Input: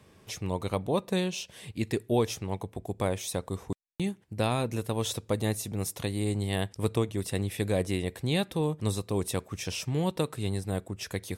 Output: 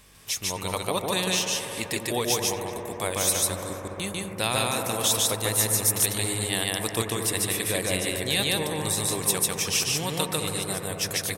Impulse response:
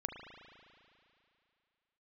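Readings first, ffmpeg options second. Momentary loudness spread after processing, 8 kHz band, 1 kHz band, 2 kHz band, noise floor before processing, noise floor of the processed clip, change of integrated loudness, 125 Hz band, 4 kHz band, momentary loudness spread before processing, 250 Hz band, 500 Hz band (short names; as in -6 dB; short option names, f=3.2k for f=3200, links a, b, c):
8 LU, +15.5 dB, +5.5 dB, +9.5 dB, -59 dBFS, -37 dBFS, +6.0 dB, -2.0 dB, +11.5 dB, 8 LU, -1.5 dB, +1.5 dB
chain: -filter_complex "[0:a]tiltshelf=f=760:g=-7.5,crystalizer=i=1:c=0,aeval=exprs='val(0)+0.00126*(sin(2*PI*50*n/s)+sin(2*PI*2*50*n/s)/2+sin(2*PI*3*50*n/s)/3+sin(2*PI*4*50*n/s)/4+sin(2*PI*5*50*n/s)/5)':c=same,asplit=2[a][b];[b]adelay=238,lowpass=f=3.2k:p=1,volume=-15dB,asplit=2[c][d];[d]adelay=238,lowpass=f=3.2k:p=1,volume=0.48,asplit=2[e][f];[f]adelay=238,lowpass=f=3.2k:p=1,volume=0.48,asplit=2[g][h];[h]adelay=238,lowpass=f=3.2k:p=1,volume=0.48[i];[a][c][e][g][i]amix=inputs=5:normalize=0,asplit=2[j][k];[1:a]atrim=start_sample=2205,asetrate=24696,aresample=44100,adelay=147[l];[k][l]afir=irnorm=-1:irlink=0,volume=-2dB[m];[j][m]amix=inputs=2:normalize=0"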